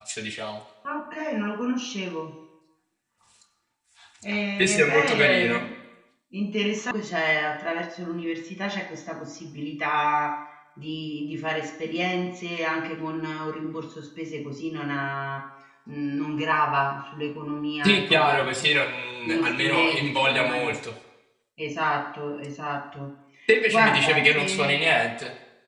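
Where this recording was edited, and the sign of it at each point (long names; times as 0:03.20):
0:06.91: cut off before it has died away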